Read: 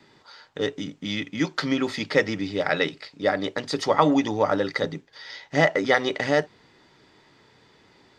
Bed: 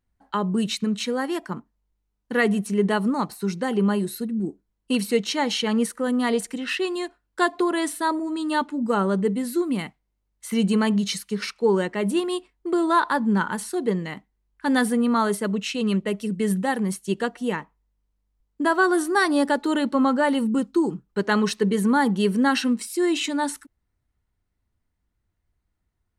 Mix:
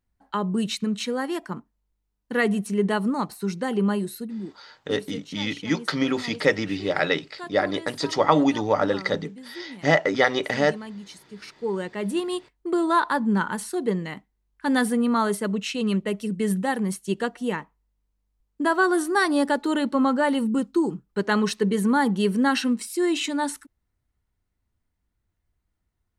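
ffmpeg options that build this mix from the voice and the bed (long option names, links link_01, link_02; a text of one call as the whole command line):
ffmpeg -i stem1.wav -i stem2.wav -filter_complex "[0:a]adelay=4300,volume=0.5dB[link_01];[1:a]volume=14dB,afade=type=out:start_time=3.91:duration=0.86:silence=0.177828,afade=type=in:start_time=11.28:duration=1.16:silence=0.16788[link_02];[link_01][link_02]amix=inputs=2:normalize=0" out.wav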